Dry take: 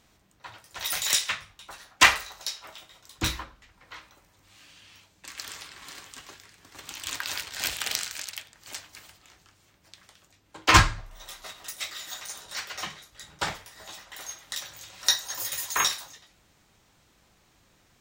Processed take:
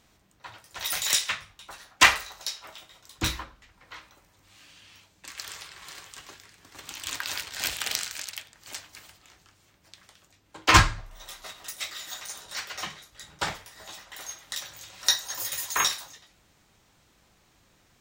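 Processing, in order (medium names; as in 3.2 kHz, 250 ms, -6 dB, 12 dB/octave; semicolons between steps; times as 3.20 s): 5.31–6.19 s: peaking EQ 260 Hz -11.5 dB 0.37 oct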